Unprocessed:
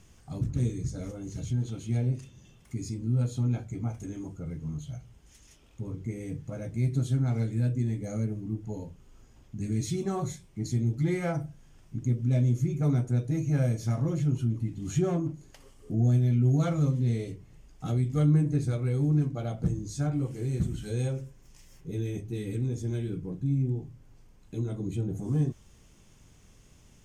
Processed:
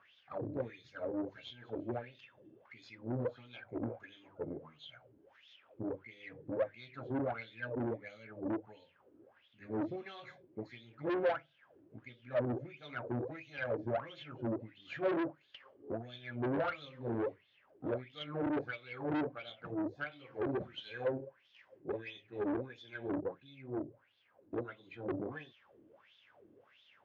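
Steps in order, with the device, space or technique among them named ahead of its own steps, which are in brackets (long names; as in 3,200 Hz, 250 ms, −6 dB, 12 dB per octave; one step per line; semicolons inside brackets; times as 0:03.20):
wah-wah guitar rig (LFO wah 1.5 Hz 300–3,600 Hz, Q 7.4; tube saturation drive 46 dB, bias 0.55; loudspeaker in its box 92–4,100 Hz, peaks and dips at 100 Hz +5 dB, 170 Hz −5 dB, 560 Hz +8 dB, 1,600 Hz +5 dB)
level +14 dB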